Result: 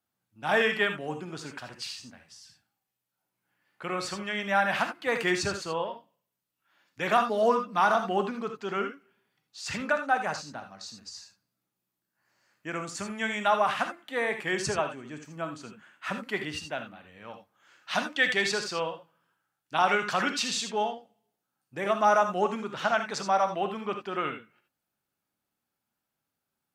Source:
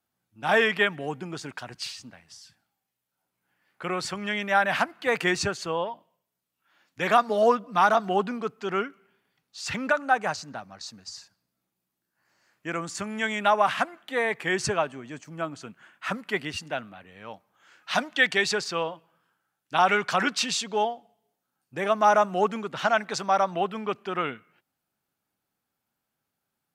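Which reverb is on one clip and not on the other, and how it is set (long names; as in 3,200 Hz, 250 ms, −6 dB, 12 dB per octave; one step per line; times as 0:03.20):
reverb whose tail is shaped and stops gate 100 ms rising, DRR 6 dB
level −3.5 dB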